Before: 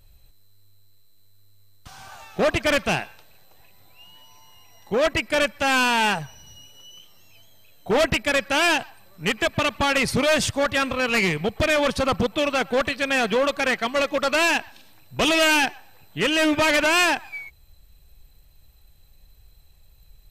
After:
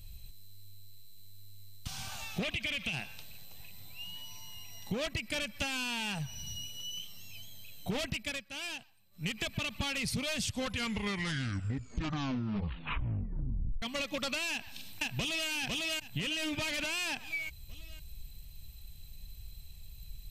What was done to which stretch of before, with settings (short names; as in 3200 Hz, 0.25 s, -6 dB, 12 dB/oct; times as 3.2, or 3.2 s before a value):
2.43–2.93 band shelf 2700 Hz +9.5 dB 1 oct
8.06–9.48 dip -21.5 dB, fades 0.37 s
10.36 tape stop 3.46 s
14.51–15.49 echo throw 0.5 s, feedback 40%, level -6.5 dB
whole clip: band shelf 750 Hz -11 dB 2.9 oct; limiter -19.5 dBFS; compressor 6:1, threshold -38 dBFS; gain +5.5 dB